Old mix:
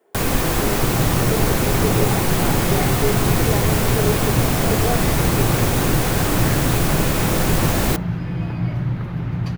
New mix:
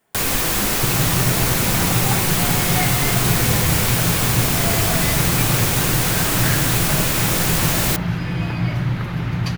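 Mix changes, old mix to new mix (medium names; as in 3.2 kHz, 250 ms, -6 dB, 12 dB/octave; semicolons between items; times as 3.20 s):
speech: remove resonant high-pass 400 Hz, resonance Q 3.8; second sound +6.5 dB; master: add tilt shelf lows -5.5 dB, about 1.3 kHz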